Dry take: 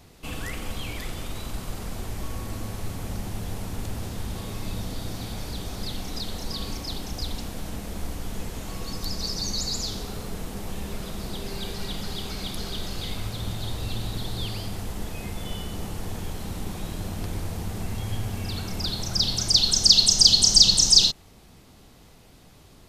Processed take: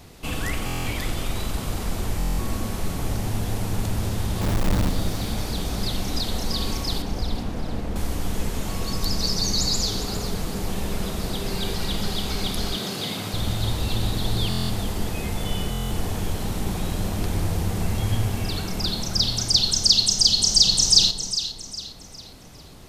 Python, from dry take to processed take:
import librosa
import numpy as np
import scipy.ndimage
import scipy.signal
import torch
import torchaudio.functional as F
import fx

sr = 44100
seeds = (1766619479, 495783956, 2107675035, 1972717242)

y = fx.halfwave_hold(x, sr, at=(4.41, 4.89))
y = fx.lowpass(y, sr, hz=1600.0, slope=6, at=(7.02, 7.96))
y = fx.echo_alternate(y, sr, ms=203, hz=1100.0, feedback_pct=56, wet_db=-7)
y = fx.rider(y, sr, range_db=4, speed_s=2.0)
y = fx.highpass(y, sr, hz=130.0, slope=24, at=(12.76, 13.34))
y = fx.buffer_glitch(y, sr, at_s=(0.65, 2.18, 14.49, 15.7), block=1024, repeats=8)
y = y * librosa.db_to_amplitude(1.5)